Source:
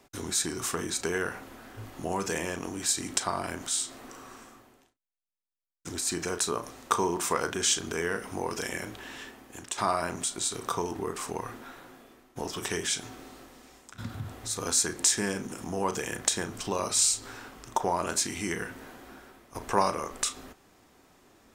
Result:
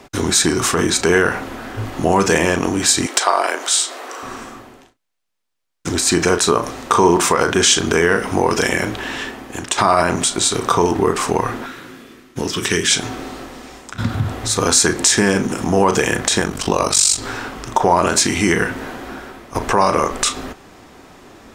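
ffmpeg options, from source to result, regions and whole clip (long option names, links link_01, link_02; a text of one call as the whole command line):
ffmpeg -i in.wav -filter_complex "[0:a]asettb=1/sr,asplit=3[link_01][link_02][link_03];[link_01]atrim=end=3.064[link_04];[link_02]atrim=start=3.06:end=4.23,asetpts=PTS-STARTPTS,afade=type=in:duration=0.004:curve=qsin,afade=type=out:start_time=1.166:duration=0.004:curve=qsin,highpass=frequency=410:width=0.5412,highpass=frequency=410:width=1.3066,asoftclip=type=hard:threshold=-17.5dB[link_05];[link_03]atrim=start=4.226[link_06];[link_04][link_05]acrossfade=duration=0.004:curve1=hsin:curve2=qsin[link_07];[link_07][link_06]acrossfade=duration=0.004:curve1=qsin:curve2=hsin,asettb=1/sr,asplit=3[link_08][link_09][link_10];[link_08]atrim=end=11.664[link_11];[link_09]atrim=start=11.66:end=12.91,asetpts=PTS-STARTPTS,afade=type=in:duration=0.004:curve=qsin,afade=type=out:start_time=1.246:duration=0.004:curve=qsin,highpass=frequency=100:poles=1,equalizer=frequency=740:width_type=o:width=1.2:gain=-12.5[link_12];[link_10]atrim=start=12.906[link_13];[link_11][link_12]acrossfade=duration=0.004:curve1=hsin:curve2=qsin[link_14];[link_14][link_13]acrossfade=duration=0.004:curve1=qsin:curve2=hsin,asettb=1/sr,asplit=3[link_15][link_16][link_17];[link_15]atrim=end=16.404[link_18];[link_16]atrim=start=16.4:end=17.18,asetpts=PTS-STARTPTS,afade=type=in:duration=0.004:curve=qsin,afade=type=out:start_time=0.776:duration=0.004:curve=qsin,highshelf=frequency=6600:gain=5,aeval=exprs='val(0)*sin(2*PI*24*n/s)':channel_layout=same[link_19];[link_17]atrim=start=17.176[link_20];[link_18][link_19]acrossfade=duration=0.004:curve1=hsin:curve2=qsin[link_21];[link_21][link_20]acrossfade=duration=0.004:curve1=qsin:curve2=hsin,highshelf=frequency=8100:gain=-11,alimiter=level_in=18.5dB:limit=-1dB:release=50:level=0:latency=1,volume=-1dB" out.wav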